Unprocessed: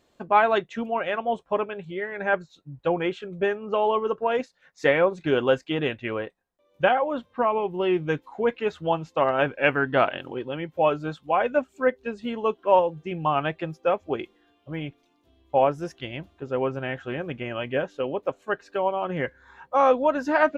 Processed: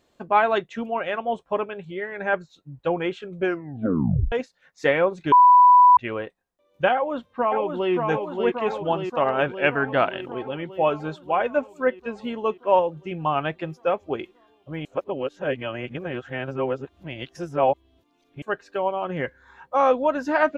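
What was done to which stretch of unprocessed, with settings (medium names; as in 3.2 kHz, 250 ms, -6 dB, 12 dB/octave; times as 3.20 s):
3.39 s: tape stop 0.93 s
5.32–5.97 s: bleep 990 Hz -9 dBFS
6.93–7.93 s: echo throw 580 ms, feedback 70%, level -4 dB
14.85–18.42 s: reverse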